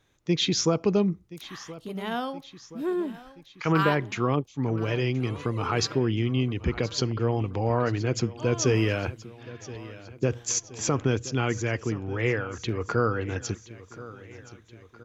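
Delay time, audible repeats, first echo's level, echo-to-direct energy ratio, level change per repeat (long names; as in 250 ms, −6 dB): 1,024 ms, 3, −17.5 dB, −16.0 dB, −5.0 dB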